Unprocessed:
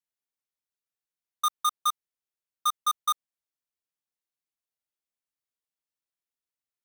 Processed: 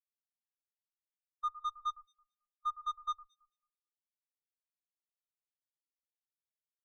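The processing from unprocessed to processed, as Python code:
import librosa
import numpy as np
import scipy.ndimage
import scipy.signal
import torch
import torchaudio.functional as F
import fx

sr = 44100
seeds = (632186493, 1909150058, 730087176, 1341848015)

y = fx.rev_spring(x, sr, rt60_s=1.8, pass_ms=(42,), chirp_ms=45, drr_db=18.0)
y = fx.clip_asym(y, sr, top_db=-32.0, bottom_db=-23.5)
y = fx.echo_alternate(y, sr, ms=110, hz=1900.0, feedback_pct=64, wet_db=-5)
y = fx.spectral_expand(y, sr, expansion=2.5)
y = y * librosa.db_to_amplitude(-5.0)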